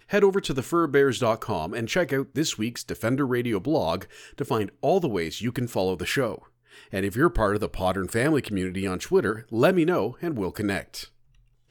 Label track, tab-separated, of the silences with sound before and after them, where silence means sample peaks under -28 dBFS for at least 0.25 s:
4.030000	4.390000	silence
6.350000	6.930000	silence